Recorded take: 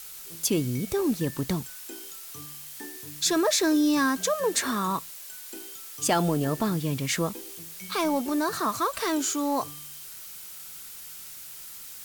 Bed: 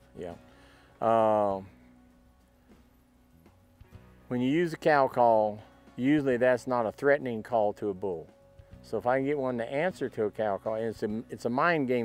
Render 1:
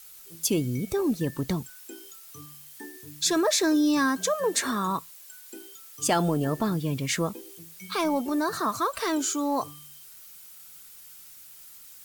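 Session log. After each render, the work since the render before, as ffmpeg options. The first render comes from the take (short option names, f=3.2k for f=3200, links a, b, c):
-af "afftdn=nr=8:nf=-43"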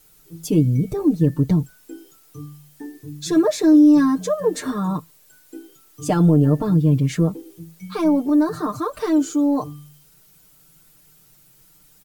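-af "tiltshelf=f=670:g=9,aecho=1:1:6.6:0.93"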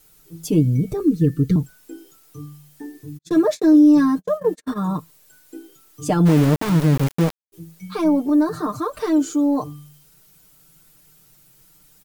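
-filter_complex "[0:a]asettb=1/sr,asplit=3[a][b][c];[a]atrim=end=1.004[d];[b]atrim=start=1:end=1.56,asetpts=PTS-STARTPTS,afade=t=in:d=0.004:c=qsin,afade=t=out:st=0.556:d=0.004:c=qsin,asuperstop=centerf=780:order=20:qfactor=1.2[e];[c]atrim=start=1.556[f];[d][e]acrossfade=d=0.004:c1=hsin:c2=qsin[g];[g][f]acrossfade=d=0.004:c1=qsin:c2=hsin,asplit=3[h][i][j];[h]afade=t=out:st=3.17:d=0.02[k];[i]agate=range=-53dB:threshold=-27dB:ratio=16:release=100:detection=peak,afade=t=in:st=3.17:d=0.02,afade=t=out:st=4.88:d=0.02[l];[j]afade=t=in:st=4.88:d=0.02[m];[k][l][m]amix=inputs=3:normalize=0,asplit=3[n][o][p];[n]afade=t=out:st=6.25:d=0.02[q];[o]aeval=exprs='val(0)*gte(abs(val(0)),0.0944)':c=same,afade=t=in:st=6.25:d=0.02,afade=t=out:st=7.52:d=0.02[r];[p]afade=t=in:st=7.52:d=0.02[s];[q][r][s]amix=inputs=3:normalize=0"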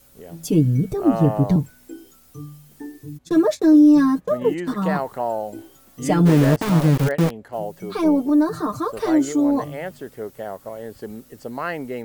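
-filter_complex "[1:a]volume=-2dB[a];[0:a][a]amix=inputs=2:normalize=0"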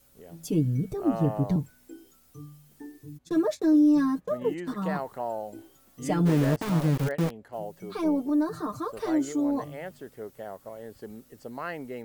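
-af "volume=-8dB"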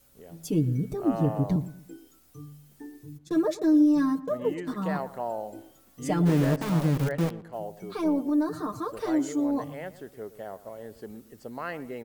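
-filter_complex "[0:a]asplit=2[a][b];[b]adelay=116,lowpass=f=1.6k:p=1,volume=-15.5dB,asplit=2[c][d];[d]adelay=116,lowpass=f=1.6k:p=1,volume=0.37,asplit=2[e][f];[f]adelay=116,lowpass=f=1.6k:p=1,volume=0.37[g];[a][c][e][g]amix=inputs=4:normalize=0"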